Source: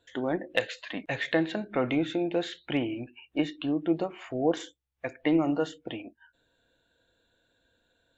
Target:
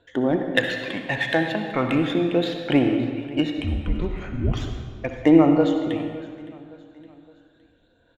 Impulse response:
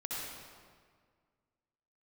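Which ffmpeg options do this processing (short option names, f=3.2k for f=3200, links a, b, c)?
-filter_complex "[0:a]adynamicsmooth=sensitivity=5.5:basefreq=4.9k,aphaser=in_gain=1:out_gain=1:delay=1.3:decay=0.47:speed=0.37:type=triangular,asplit=3[a][b][c];[a]afade=t=out:st=3.56:d=0.02[d];[b]afreqshift=-370,afade=t=in:st=3.56:d=0.02,afade=t=out:st=4.6:d=0.02[e];[c]afade=t=in:st=4.6:d=0.02[f];[d][e][f]amix=inputs=3:normalize=0,aecho=1:1:564|1128|1692:0.1|0.046|0.0212,asplit=2[g][h];[1:a]atrim=start_sample=2205[i];[h][i]afir=irnorm=-1:irlink=0,volume=-3.5dB[j];[g][j]amix=inputs=2:normalize=0,volume=2dB"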